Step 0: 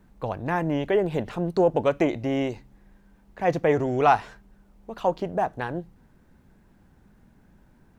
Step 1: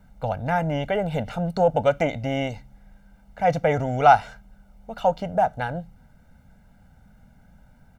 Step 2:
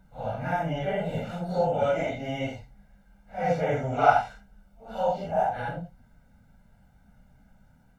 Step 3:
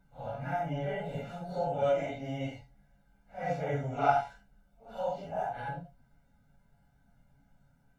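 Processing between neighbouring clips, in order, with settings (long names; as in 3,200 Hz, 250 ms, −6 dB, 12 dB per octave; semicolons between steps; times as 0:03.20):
comb filter 1.4 ms, depth 90%
random phases in long frames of 200 ms; level −4.5 dB
tuned comb filter 140 Hz, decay 0.18 s, harmonics all, mix 80%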